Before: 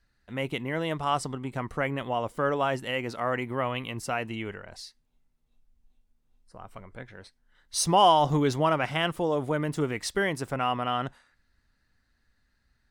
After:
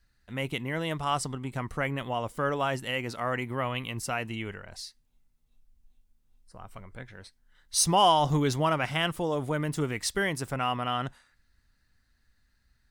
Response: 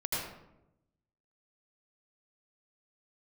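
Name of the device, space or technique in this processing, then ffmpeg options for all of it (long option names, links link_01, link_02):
smiley-face EQ: -af "lowshelf=frequency=190:gain=3,equalizer=frequency=440:width_type=o:width=2.6:gain=-3.5,highshelf=frequency=6000:gain=5.5"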